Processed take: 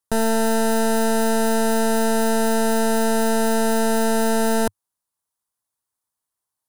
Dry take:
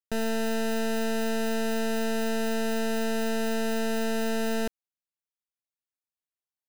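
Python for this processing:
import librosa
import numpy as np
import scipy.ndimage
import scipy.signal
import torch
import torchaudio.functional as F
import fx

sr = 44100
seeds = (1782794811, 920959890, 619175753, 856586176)

y = fx.graphic_eq_15(x, sr, hz=(100, 1000, 2500, 10000), db=(6, 9, -8, 9))
y = y * librosa.db_to_amplitude(7.5)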